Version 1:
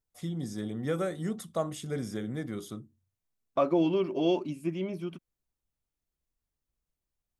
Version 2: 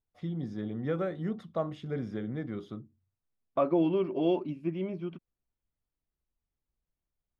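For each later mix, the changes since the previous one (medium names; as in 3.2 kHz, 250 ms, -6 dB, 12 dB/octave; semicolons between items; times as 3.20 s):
master: add distance through air 300 m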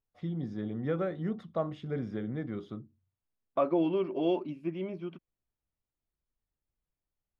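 first voice: add treble shelf 7.5 kHz -10.5 dB; second voice: add bass shelf 150 Hz -9.5 dB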